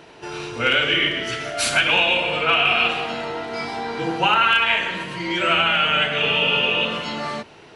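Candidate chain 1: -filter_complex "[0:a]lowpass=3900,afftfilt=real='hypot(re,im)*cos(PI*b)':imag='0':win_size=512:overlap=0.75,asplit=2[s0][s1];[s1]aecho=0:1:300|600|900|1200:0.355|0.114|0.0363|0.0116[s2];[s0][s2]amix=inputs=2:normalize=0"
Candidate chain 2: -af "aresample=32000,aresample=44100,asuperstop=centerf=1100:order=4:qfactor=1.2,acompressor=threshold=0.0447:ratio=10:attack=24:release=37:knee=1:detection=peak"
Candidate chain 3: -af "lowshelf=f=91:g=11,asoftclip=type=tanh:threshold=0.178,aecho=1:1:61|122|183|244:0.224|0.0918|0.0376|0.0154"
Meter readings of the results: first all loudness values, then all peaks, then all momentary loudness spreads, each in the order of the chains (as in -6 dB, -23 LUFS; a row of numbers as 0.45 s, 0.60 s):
-22.5 LUFS, -25.0 LUFS, -21.0 LUFS; -7.0 dBFS, -12.0 dBFS, -12.5 dBFS; 12 LU, 7 LU, 10 LU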